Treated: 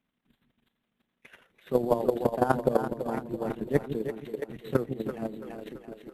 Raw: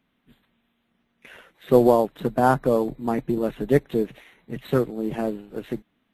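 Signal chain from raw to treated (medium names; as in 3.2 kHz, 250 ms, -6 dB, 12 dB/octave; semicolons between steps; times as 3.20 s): square tremolo 12 Hz, depth 60%, duty 20%; two-band feedback delay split 370 Hz, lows 158 ms, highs 335 ms, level -5 dB; level held to a coarse grid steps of 10 dB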